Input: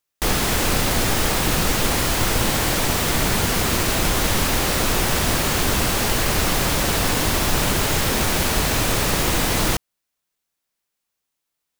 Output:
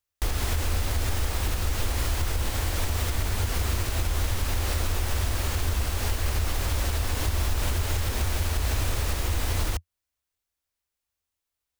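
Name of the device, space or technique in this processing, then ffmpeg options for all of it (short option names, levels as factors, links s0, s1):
car stereo with a boomy subwoofer: -af "lowshelf=f=110:t=q:w=3:g=9,alimiter=limit=0.299:level=0:latency=1:release=246,volume=0.501"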